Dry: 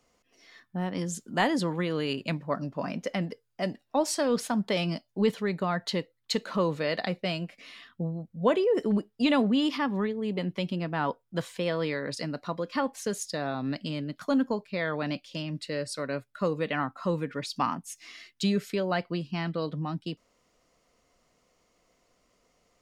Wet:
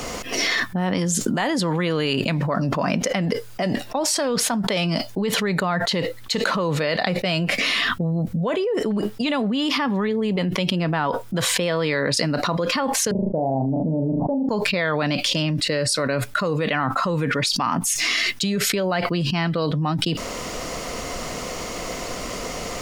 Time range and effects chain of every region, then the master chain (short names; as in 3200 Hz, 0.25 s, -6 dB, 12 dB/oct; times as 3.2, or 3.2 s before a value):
13.11–14.49 steep low-pass 900 Hz 96 dB/oct + flutter echo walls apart 6.4 m, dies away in 0.32 s
whole clip: dynamic EQ 290 Hz, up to -4 dB, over -36 dBFS, Q 0.88; fast leveller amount 100%; gain -1 dB